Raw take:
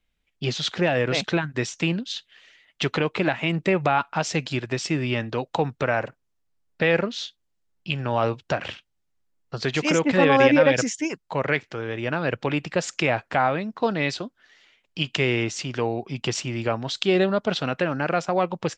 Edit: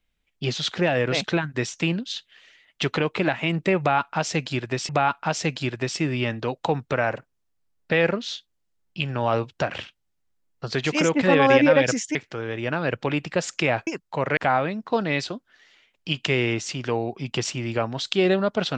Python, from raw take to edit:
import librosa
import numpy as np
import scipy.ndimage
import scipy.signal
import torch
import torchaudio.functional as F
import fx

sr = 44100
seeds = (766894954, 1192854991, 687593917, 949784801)

y = fx.edit(x, sr, fx.repeat(start_s=3.79, length_s=1.1, count=2),
    fx.move(start_s=11.05, length_s=0.5, to_s=13.27), tone=tone)